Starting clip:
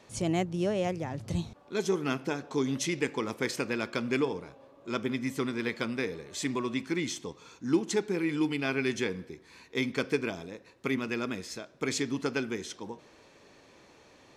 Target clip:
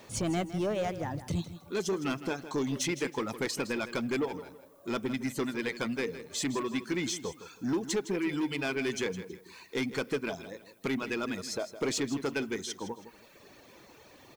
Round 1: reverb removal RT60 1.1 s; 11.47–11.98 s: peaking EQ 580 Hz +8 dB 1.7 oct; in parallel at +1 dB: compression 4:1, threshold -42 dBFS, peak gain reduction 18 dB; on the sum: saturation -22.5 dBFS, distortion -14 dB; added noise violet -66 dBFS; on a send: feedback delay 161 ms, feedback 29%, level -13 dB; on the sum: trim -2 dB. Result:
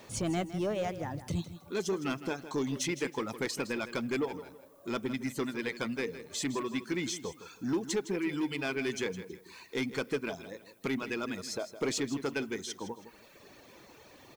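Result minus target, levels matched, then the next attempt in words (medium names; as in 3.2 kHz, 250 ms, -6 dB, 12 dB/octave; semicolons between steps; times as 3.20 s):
compression: peak gain reduction +7 dB
reverb removal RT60 1.1 s; 11.47–11.98 s: peaking EQ 580 Hz +8 dB 1.7 oct; in parallel at +1 dB: compression 4:1, threshold -32.5 dBFS, peak gain reduction 11 dB; on the sum: saturation -22.5 dBFS, distortion -12 dB; added noise violet -66 dBFS; on a send: feedback delay 161 ms, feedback 29%, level -13 dB; on the sum: trim -2 dB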